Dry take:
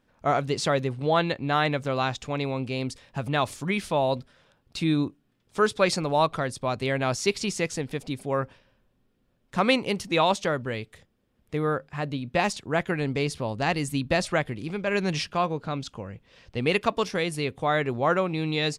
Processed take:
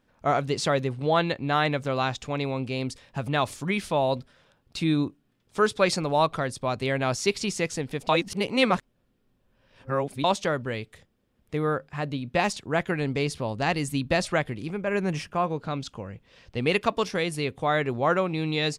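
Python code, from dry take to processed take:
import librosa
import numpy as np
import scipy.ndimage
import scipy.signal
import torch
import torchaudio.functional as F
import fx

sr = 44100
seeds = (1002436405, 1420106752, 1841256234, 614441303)

y = fx.peak_eq(x, sr, hz=4100.0, db=-12.5, octaves=1.1, at=(14.7, 15.47))
y = fx.edit(y, sr, fx.reverse_span(start_s=8.09, length_s=2.15), tone=tone)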